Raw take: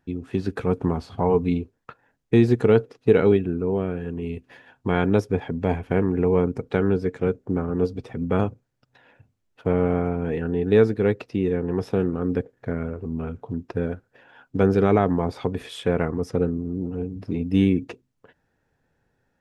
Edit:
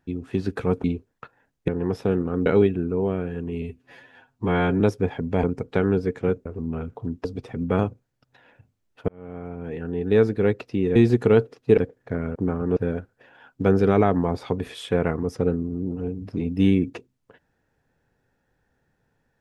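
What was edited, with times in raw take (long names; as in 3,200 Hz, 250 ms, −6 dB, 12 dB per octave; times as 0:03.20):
0:00.84–0:01.50: remove
0:02.34–0:03.16: swap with 0:11.56–0:12.34
0:04.32–0:05.11: time-stretch 1.5×
0:05.74–0:06.42: remove
0:07.44–0:07.85: swap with 0:12.92–0:13.71
0:09.69–0:10.99: fade in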